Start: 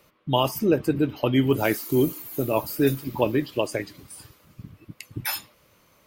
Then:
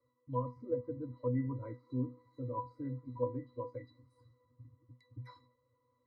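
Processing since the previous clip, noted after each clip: fixed phaser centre 710 Hz, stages 6; treble ducked by the level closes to 1900 Hz, closed at -22.5 dBFS; octave resonator B, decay 0.2 s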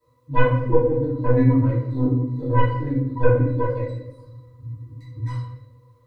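tracing distortion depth 0.25 ms; reverb RT60 0.85 s, pre-delay 3 ms, DRR -9.5 dB; gain +4 dB

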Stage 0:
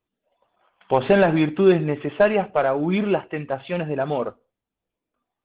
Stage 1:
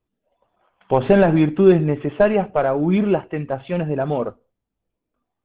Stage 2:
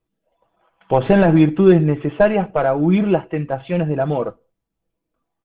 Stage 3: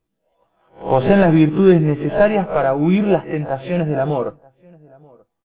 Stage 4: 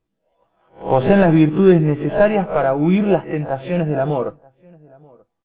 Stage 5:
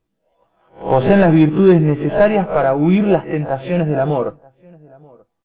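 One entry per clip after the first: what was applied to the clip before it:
tilt -2 dB/oct
comb 6.1 ms, depth 39%; gain +1 dB
spectral swells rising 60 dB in 0.31 s; outdoor echo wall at 160 m, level -26 dB
air absorption 59 m
soft clip -3 dBFS, distortion -22 dB; gain +2.5 dB

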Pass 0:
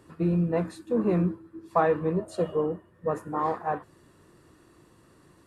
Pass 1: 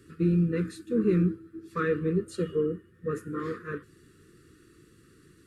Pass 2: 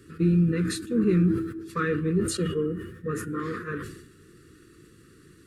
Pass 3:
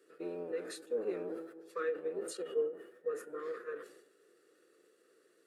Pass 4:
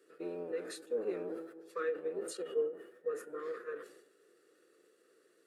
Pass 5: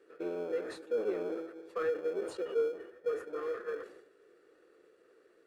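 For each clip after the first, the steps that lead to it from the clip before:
Chebyshev band-stop 450–1300 Hz, order 3; gain +1.5 dB
dynamic EQ 570 Hz, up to -6 dB, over -39 dBFS, Q 1.1; sustainer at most 64 dB/s; gain +3.5 dB
octaver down 1 oct, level +1 dB; ladder high-pass 440 Hz, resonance 65%; ending taper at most 170 dB/s; gain -2.5 dB
nothing audible
in parallel at -9.5 dB: sample-rate reducer 1900 Hz, jitter 0%; on the sum: overdrive pedal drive 13 dB, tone 1100 Hz, clips at -21 dBFS

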